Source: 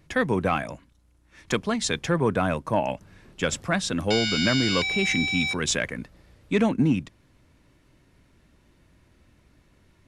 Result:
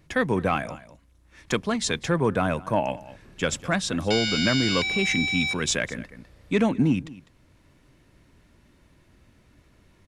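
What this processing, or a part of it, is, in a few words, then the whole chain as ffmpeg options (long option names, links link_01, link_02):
ducked delay: -filter_complex "[0:a]asplit=3[link_01][link_02][link_03];[link_02]adelay=202,volume=-3dB[link_04];[link_03]apad=whole_len=453079[link_05];[link_04][link_05]sidechaincompress=threshold=-41dB:ratio=8:attack=16:release=420[link_06];[link_01][link_06]amix=inputs=2:normalize=0"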